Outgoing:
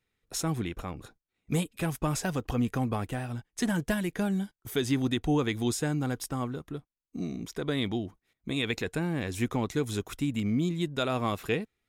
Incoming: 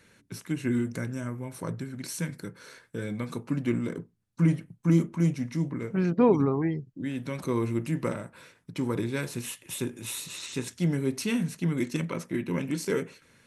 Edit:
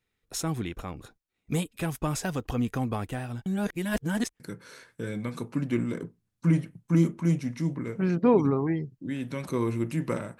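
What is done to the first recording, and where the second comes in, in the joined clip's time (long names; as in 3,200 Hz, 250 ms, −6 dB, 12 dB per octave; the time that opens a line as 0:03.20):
outgoing
0:03.46–0:04.40: reverse
0:04.40: continue with incoming from 0:02.35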